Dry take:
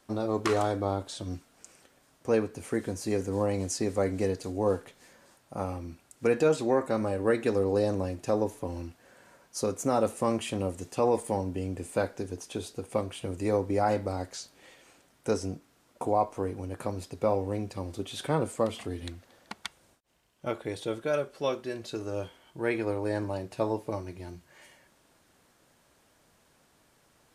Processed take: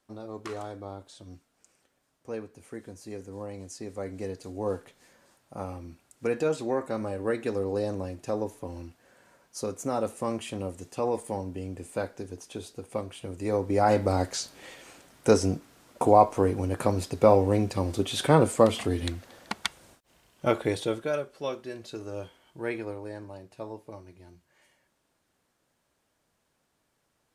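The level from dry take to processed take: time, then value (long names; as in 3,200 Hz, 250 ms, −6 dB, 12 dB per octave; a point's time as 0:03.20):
0:03.70 −10.5 dB
0:04.77 −3 dB
0:13.35 −3 dB
0:14.16 +8 dB
0:20.67 +8 dB
0:21.25 −3 dB
0:22.70 −3 dB
0:23.18 −10 dB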